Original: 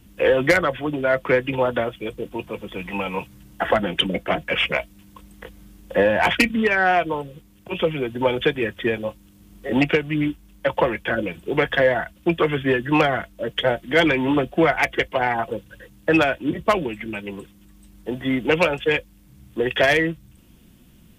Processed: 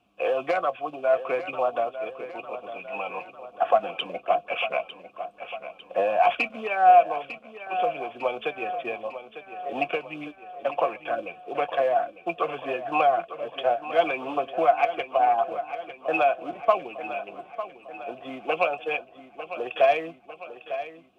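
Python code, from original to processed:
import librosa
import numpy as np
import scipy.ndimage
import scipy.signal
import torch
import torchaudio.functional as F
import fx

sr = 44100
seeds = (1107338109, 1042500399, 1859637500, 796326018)

y = fx.quant_companded(x, sr, bits=6)
y = fx.vowel_filter(y, sr, vowel='a')
y = fx.echo_feedback(y, sr, ms=901, feedback_pct=54, wet_db=-12.0)
y = F.gain(torch.from_numpy(y), 5.5).numpy()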